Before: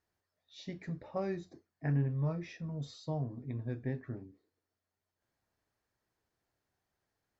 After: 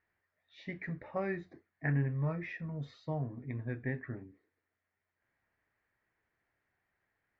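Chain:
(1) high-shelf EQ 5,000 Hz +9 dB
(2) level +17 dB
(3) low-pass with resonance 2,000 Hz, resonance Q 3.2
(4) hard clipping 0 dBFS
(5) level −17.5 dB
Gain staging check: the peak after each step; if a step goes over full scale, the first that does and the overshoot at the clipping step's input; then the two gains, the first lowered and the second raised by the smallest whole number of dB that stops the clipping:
−21.5, −4.5, −3.0, −3.0, −20.5 dBFS
no step passes full scale

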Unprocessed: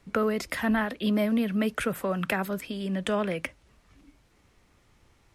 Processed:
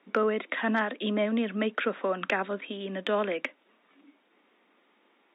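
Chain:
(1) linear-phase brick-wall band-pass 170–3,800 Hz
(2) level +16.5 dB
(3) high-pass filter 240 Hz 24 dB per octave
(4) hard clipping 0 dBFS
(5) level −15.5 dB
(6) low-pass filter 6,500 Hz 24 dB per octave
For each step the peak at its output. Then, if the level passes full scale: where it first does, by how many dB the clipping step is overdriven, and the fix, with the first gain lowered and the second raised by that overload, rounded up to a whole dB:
−12.5, +4.0, +5.0, 0.0, −15.5, −14.5 dBFS
step 2, 5.0 dB
step 2 +11.5 dB, step 5 −10.5 dB

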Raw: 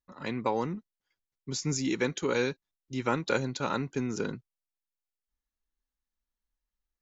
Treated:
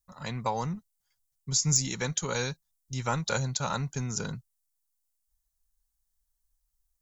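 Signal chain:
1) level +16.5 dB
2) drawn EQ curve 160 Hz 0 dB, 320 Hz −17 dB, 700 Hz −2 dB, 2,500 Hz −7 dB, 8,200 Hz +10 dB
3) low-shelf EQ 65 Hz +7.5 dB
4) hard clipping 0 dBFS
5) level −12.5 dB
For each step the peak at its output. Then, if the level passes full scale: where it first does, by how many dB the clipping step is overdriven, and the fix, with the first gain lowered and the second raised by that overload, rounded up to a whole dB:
+2.5, +5.0, +5.0, 0.0, −12.5 dBFS
step 1, 5.0 dB
step 1 +11.5 dB, step 5 −7.5 dB

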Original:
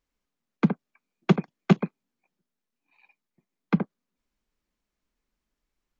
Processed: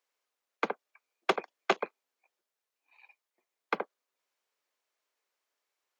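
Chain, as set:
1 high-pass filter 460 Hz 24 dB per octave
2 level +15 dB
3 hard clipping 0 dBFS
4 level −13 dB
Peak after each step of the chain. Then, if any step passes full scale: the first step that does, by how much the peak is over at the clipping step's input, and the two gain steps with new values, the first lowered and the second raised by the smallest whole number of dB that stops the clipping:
−10.0, +5.0, 0.0, −13.0 dBFS
step 2, 5.0 dB
step 2 +10 dB, step 4 −8 dB

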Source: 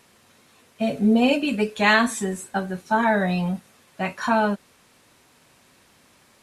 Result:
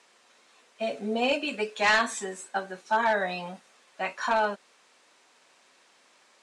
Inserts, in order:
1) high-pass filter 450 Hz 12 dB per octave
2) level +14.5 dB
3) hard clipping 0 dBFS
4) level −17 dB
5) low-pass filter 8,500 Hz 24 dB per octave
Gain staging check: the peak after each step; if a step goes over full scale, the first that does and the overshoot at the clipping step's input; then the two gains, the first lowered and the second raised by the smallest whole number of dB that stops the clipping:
−5.5, +9.0, 0.0, −17.0, −15.5 dBFS
step 2, 9.0 dB
step 2 +5.5 dB, step 4 −8 dB

